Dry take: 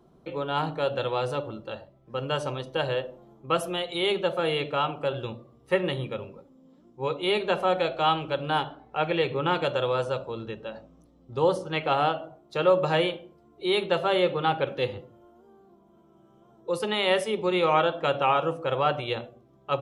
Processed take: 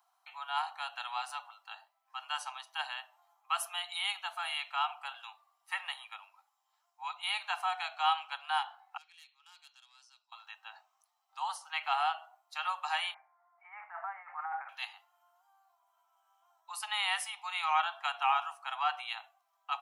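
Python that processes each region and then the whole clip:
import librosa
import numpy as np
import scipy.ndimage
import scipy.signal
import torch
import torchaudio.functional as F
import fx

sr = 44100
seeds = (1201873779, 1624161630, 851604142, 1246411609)

y = fx.chain(x, sr, fx.bandpass_q(hz=5300.0, q=6.5),
    fx.transformer_sat(knee_hz=3400.0), at=(8.97, 10.32))
y = fx.chain(y, sr, fx.steep_lowpass(hz=2100.0, slope=72),
    fx.over_compress(threshold_db=-29.0, ratio=-1.0), at=(13.14, 14.69))
y = scipy.signal.sosfilt(scipy.signal.butter(16, 730.0, 'highpass', fs=sr, output='sos'), y)
y = fx.high_shelf(y, sr, hz=7100.0, db=10.5)
y = fx.notch(y, sr, hz=3500.0, q=11.0)
y = F.gain(torch.from_numpy(y), -5.0).numpy()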